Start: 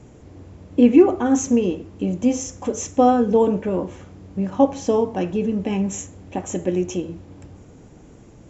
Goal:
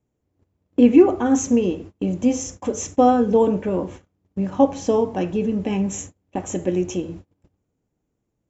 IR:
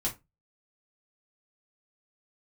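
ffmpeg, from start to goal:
-af "agate=range=-30dB:threshold=-36dB:ratio=16:detection=peak"

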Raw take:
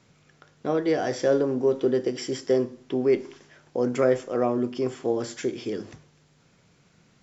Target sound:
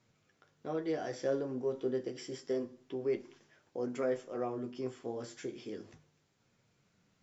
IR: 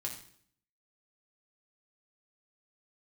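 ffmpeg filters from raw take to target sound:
-af "flanger=delay=8.3:depth=8.4:regen=-32:speed=0.3:shape=triangular,volume=-8.5dB"

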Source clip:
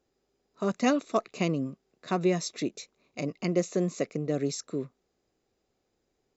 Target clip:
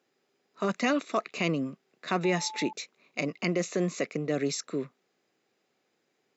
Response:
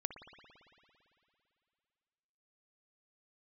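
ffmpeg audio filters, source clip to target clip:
-filter_complex "[0:a]highpass=f=140:w=0.5412,highpass=f=140:w=1.3066,alimiter=limit=-19.5dB:level=0:latency=1:release=13,equalizer=f=2.1k:t=o:w=2:g=9,asettb=1/sr,asplit=3[a][b][c];[a]atrim=end=2.244[d];[b]atrim=start=2.24:end=2.73,asetpts=PTS-STARTPTS,afade=t=in:d=0.004:c=qsin,afade=t=out:st=0.486:d=0.004:c=qsin,aeval=exprs='val(0)+0.0112*sin(2*PI*870*n/s)':c=same[e];[c]atrim=start=2.726[f];[d][e]acrossfade=d=0.004:c1=hsin:c2=qsin[g];[g][f]acrossfade=d=0.004:c1=qsin:c2=hsin"

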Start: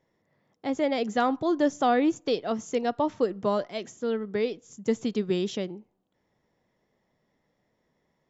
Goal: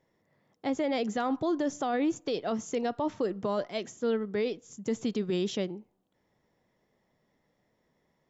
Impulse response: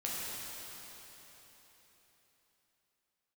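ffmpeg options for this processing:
-af "alimiter=limit=-21.5dB:level=0:latency=1:release=22"

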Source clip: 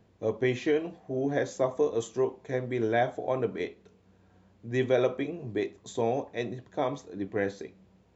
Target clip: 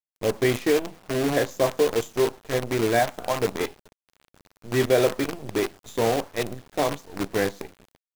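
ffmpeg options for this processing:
-filter_complex "[0:a]asettb=1/sr,asplit=3[a][b][c];[a]atrim=end=2.994[d];[b]atrim=start=2.99:end=3.41,asetpts=PTS-STARTPTS,afade=t=in:d=0.004:c=qsin,afade=t=out:st=0.416:d=0.004:c=qsin,equalizer=f=100:t=o:w=0.67:g=-8,equalizer=f=400:t=o:w=0.67:g=-11,equalizer=f=1k:t=o:w=0.67:g=4[e];[c]atrim=start=3.406[f];[d][e]acrossfade=d=0.004:c1=hsin:c2=qsin[g];[g][f]acrossfade=d=0.004:c1=qsin:c2=hsin,acrusher=bits=6:dc=4:mix=0:aa=0.000001,volume=5dB"

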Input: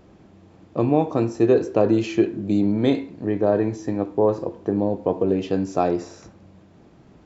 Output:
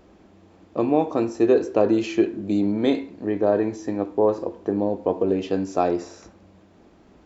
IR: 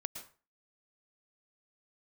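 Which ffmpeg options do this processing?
-af "equalizer=f=130:t=o:w=0.65:g=-13"

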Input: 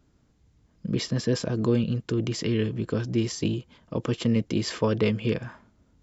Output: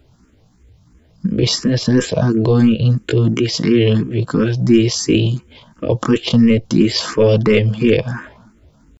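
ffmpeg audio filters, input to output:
-filter_complex "[0:a]atempo=0.67,apsyclip=17.5dB,asplit=2[a][b];[b]afreqshift=2.9[c];[a][c]amix=inputs=2:normalize=1,volume=-2dB"

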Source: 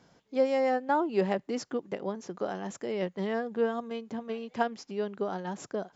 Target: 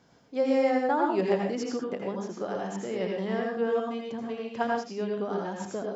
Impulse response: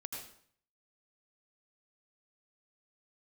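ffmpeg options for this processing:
-filter_complex "[1:a]atrim=start_sample=2205,afade=t=out:st=0.26:d=0.01,atrim=end_sample=11907[a];[0:a][a]afir=irnorm=-1:irlink=0,volume=3.5dB"

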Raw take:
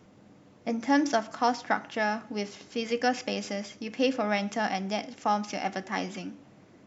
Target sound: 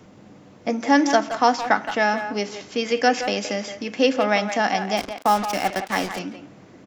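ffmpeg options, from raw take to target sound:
-filter_complex "[0:a]acrossover=split=220[a][b];[a]acompressor=threshold=-47dB:ratio=6[c];[c][b]amix=inputs=2:normalize=0,asettb=1/sr,asplit=3[d][e][f];[d]atrim=end=4.974[g];[e]atrim=start=4.97:end=6.19,asetpts=PTS-STARTPTS,afade=t=in:d=0.004:c=qsin,afade=t=out:st=1.216:d=0.004:c=qsin,acrusher=bits=5:mix=0:aa=0.5[h];[f]atrim=start=6.186[i];[g][h]acrossfade=d=0.004:c1=hsin:c2=qsin[j];[j][i]acrossfade=d=0.004:c1=qsin:c2=hsin,asplit=2[k][l];[l]adelay=170,highpass=300,lowpass=3.4k,asoftclip=type=hard:threshold=-20dB,volume=-9dB[m];[k][m]amix=inputs=2:normalize=0,volume=8dB"

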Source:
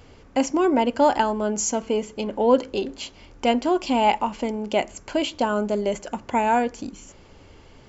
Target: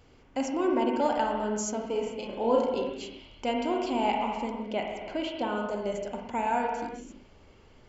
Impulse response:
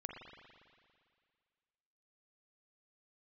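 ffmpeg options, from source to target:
-filter_complex "[0:a]asettb=1/sr,asplit=3[a][b][c];[a]atrim=end=1.924[d];[b]atrim=start=1.92:end=2.74,asetpts=PTS-STARTPTS,afade=t=in:d=0.004:c=qsin,afade=t=out:st=0.816:d=0.004:c=qsin,asplit=2[e][f];[f]adelay=35,volume=-2.5dB[g];[e][g]amix=inputs=2:normalize=0,atrim=end_sample=36162[h];[c]atrim=start=2.736[i];[d][h]acrossfade=d=0.004:c1=hsin:c2=qsin[j];[j][i]acrossfade=d=0.004:c1=qsin:c2=hsin,asettb=1/sr,asplit=3[k][l][m];[k]atrim=end=4.644[n];[l]atrim=start=4.64:end=5.57,asetpts=PTS-STARTPTS,afade=t=in:d=0.004:c=qsin,afade=t=out:st=0.926:d=0.004:c=qsin,lowpass=4.5k[o];[m]atrim=start=5.566[p];[n][o]acrossfade=d=0.004:c1=hsin:c2=qsin[q];[q][p]acrossfade=d=0.004:c1=qsin:c2=hsin[r];[1:a]atrim=start_sample=2205,afade=t=out:st=0.43:d=0.01,atrim=end_sample=19404[s];[r][s]afir=irnorm=-1:irlink=0,volume=-4.5dB"

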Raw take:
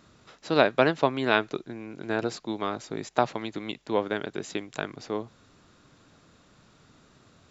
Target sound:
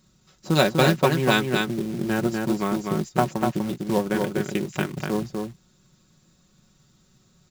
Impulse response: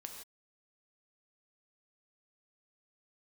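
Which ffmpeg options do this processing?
-filter_complex "[0:a]afwtdn=0.0126,bass=f=250:g=12,treble=f=4k:g=14,aecho=1:1:5.4:0.66,asplit=2[a][b];[b]acompressor=threshold=-29dB:ratio=20,volume=2dB[c];[a][c]amix=inputs=2:normalize=0,acrusher=bits=4:mode=log:mix=0:aa=0.000001,asplit=2[d][e];[e]aecho=0:1:246:0.631[f];[d][f]amix=inputs=2:normalize=0,volume=-3dB"

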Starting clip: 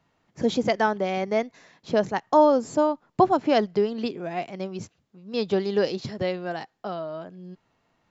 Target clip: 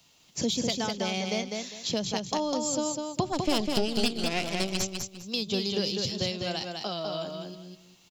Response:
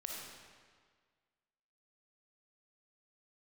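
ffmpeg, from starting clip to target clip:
-filter_complex "[0:a]aexciter=amount=4.5:drive=9:freq=2.6k,acrossover=split=210[a][b];[b]acompressor=threshold=-30dB:ratio=5[c];[a][c]amix=inputs=2:normalize=0,asplit=3[d][e][f];[d]afade=t=out:st=3.32:d=0.02[g];[e]aeval=exprs='0.141*(cos(1*acos(clip(val(0)/0.141,-1,1)))-cos(1*PI/2))+0.0447*(cos(4*acos(clip(val(0)/0.141,-1,1)))-cos(4*PI/2))':c=same,afade=t=in:st=3.32:d=0.02,afade=t=out:st=4.81:d=0.02[h];[f]afade=t=in:st=4.81:d=0.02[i];[g][h][i]amix=inputs=3:normalize=0,aecho=1:1:201|402|603:0.631|0.151|0.0363"

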